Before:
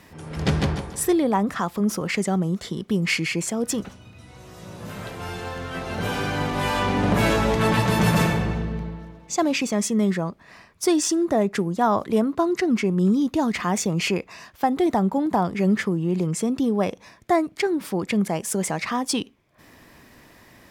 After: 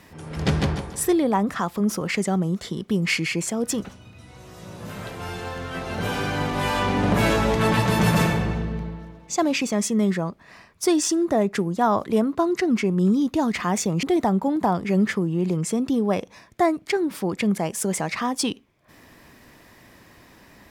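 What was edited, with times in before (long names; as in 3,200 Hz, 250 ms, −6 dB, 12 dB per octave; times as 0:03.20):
0:14.03–0:14.73: remove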